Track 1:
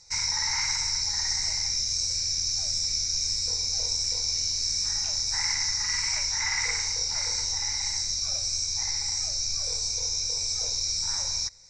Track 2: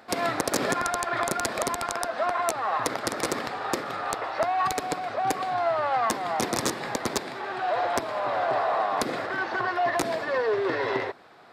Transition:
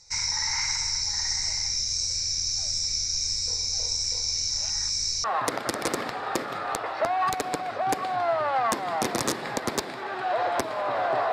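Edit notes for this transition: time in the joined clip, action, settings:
track 1
4.50–5.24 s: reverse
5.24 s: go over to track 2 from 2.62 s

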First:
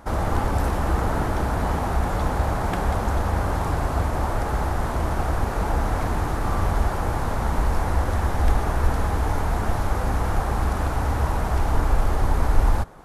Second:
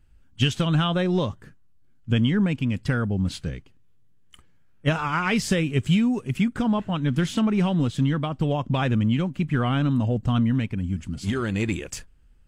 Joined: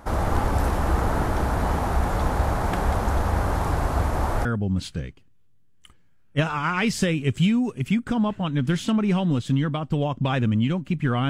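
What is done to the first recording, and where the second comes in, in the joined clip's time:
first
4.45 s: go over to second from 2.94 s

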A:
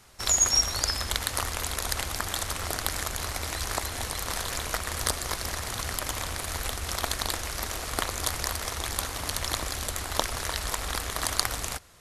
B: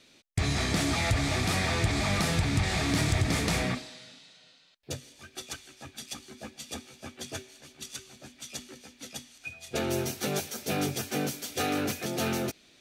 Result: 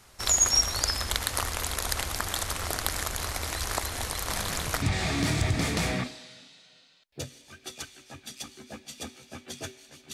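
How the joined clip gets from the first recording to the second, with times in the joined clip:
A
4.28 s: add B from 1.99 s 0.54 s -12.5 dB
4.82 s: go over to B from 2.53 s

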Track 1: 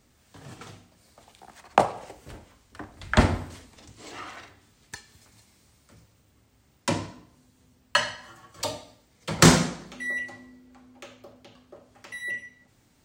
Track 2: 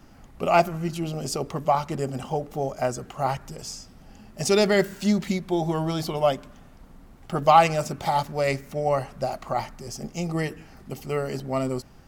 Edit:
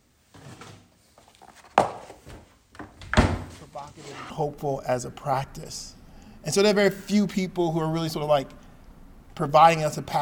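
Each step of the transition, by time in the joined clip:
track 1
3.61 s: add track 2 from 1.54 s 0.69 s -17 dB
4.30 s: go over to track 2 from 2.23 s

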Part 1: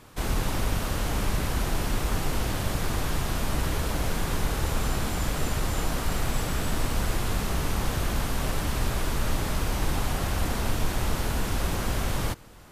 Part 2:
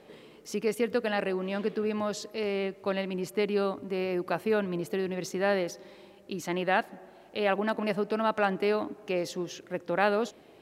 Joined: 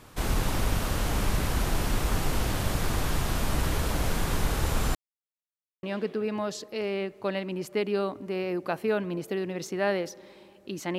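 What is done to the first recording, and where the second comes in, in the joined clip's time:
part 1
4.95–5.83 s: mute
5.83 s: go over to part 2 from 1.45 s

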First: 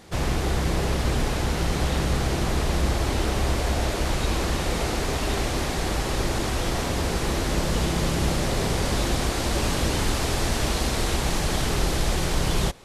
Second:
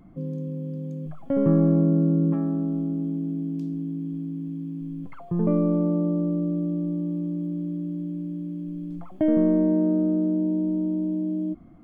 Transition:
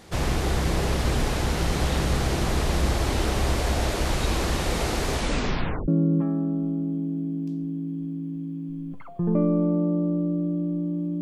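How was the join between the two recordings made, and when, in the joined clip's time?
first
5.12 s: tape stop 0.76 s
5.88 s: go over to second from 2.00 s

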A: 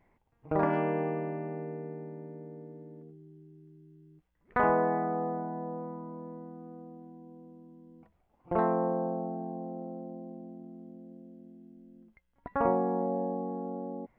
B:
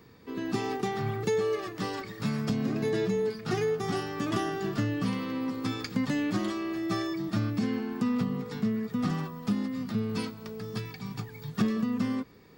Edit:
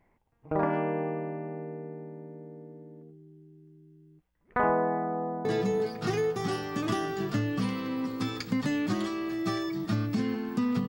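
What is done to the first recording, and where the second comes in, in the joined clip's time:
A
5.09–5.45 s: echo throw 350 ms, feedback 60%, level -5 dB
5.45 s: go over to B from 2.89 s

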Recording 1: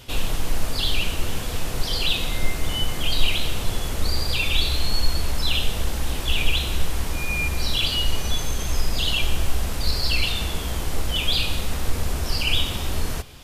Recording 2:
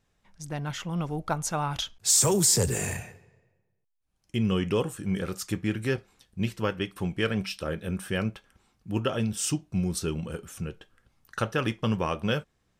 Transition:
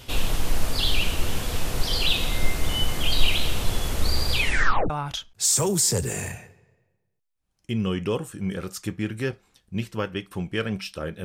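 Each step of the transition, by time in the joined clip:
recording 1
4.37 s: tape stop 0.53 s
4.90 s: go over to recording 2 from 1.55 s

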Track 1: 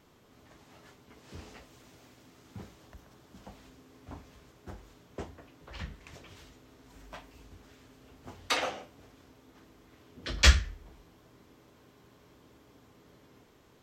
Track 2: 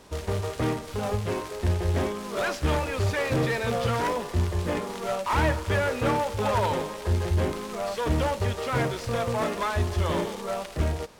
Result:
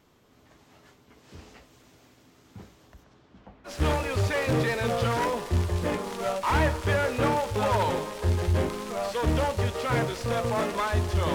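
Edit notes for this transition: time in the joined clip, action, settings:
track 1
3.03–3.78 s: low-pass 7.1 kHz -> 1.3 kHz
3.71 s: go over to track 2 from 2.54 s, crossfade 0.14 s

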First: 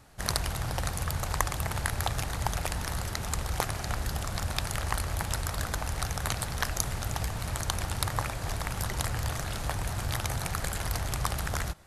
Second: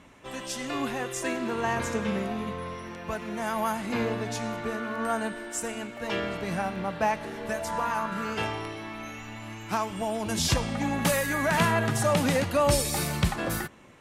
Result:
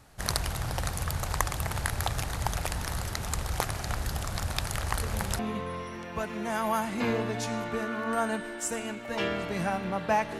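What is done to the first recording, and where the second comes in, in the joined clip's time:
first
4.98 s: add second from 1.90 s 0.41 s -12.5 dB
5.39 s: go over to second from 2.31 s

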